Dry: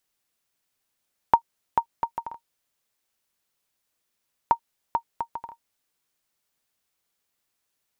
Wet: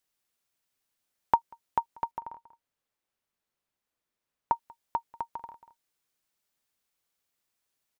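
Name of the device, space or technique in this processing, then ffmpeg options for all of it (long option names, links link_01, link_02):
ducked delay: -filter_complex "[0:a]asplit=3[link_01][link_02][link_03];[link_02]adelay=189,volume=-9dB[link_04];[link_03]apad=whole_len=360820[link_05];[link_04][link_05]sidechaincompress=threshold=-37dB:ratio=8:attack=7.4:release=571[link_06];[link_01][link_06]amix=inputs=2:normalize=0,asettb=1/sr,asplit=3[link_07][link_08][link_09];[link_07]atrim=end=2.114[link_10];[link_08]atrim=start=2.11:end=4.54,asetpts=PTS-STARTPTS,afade=type=in:duration=0.004:curve=qsin,afade=type=out:start_time=2.426:duration=0.004:curve=qsin,highshelf=frequency=2900:gain=-9.5[link_11];[link_09]atrim=start=4.536[link_12];[link_10][link_11]acrossfade=duration=0.004:curve1=hsin:curve2=qsin[link_13];[link_13][link_12]acrossfade=duration=0.004:curve1=qsin:curve2=hsin,volume=-4dB"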